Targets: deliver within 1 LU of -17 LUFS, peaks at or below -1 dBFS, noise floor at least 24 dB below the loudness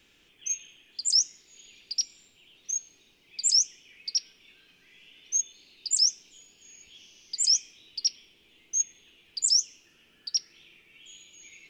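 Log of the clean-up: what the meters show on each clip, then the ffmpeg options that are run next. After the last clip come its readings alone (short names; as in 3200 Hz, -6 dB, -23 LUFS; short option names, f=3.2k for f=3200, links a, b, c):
loudness -26.0 LUFS; peak -12.0 dBFS; loudness target -17.0 LUFS
-> -af "volume=9dB"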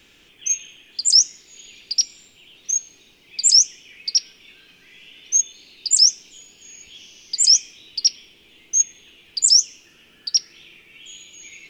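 loudness -17.0 LUFS; peak -3.0 dBFS; noise floor -54 dBFS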